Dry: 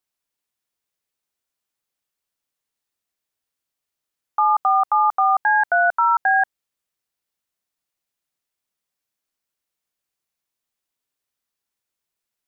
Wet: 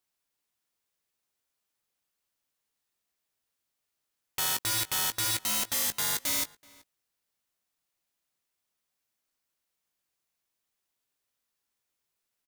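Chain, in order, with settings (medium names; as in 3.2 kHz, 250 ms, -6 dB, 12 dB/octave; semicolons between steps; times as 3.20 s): integer overflow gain 23.5 dB; doubling 18 ms -11.5 dB; echo from a far wall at 65 m, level -22 dB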